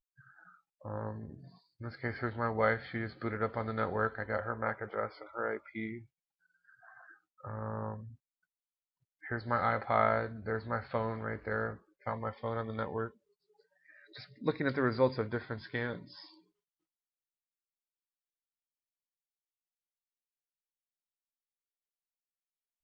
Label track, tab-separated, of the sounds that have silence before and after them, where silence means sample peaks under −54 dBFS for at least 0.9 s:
9.230000	16.390000	sound